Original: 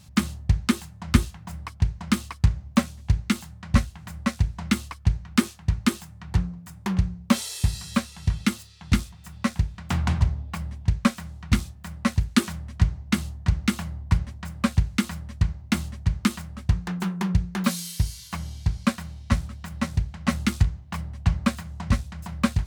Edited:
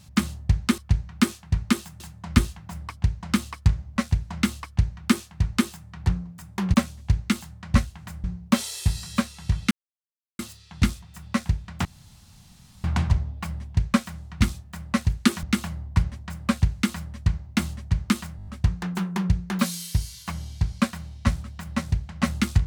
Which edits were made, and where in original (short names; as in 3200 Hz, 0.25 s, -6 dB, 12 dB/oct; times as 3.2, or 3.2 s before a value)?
2.74–4.24 move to 7.02
4.94–6.16 copy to 0.78
8.49 insert silence 0.68 s
9.95 insert room tone 0.99 s
12.54–13.58 cut
16.52 stutter 0.02 s, 6 plays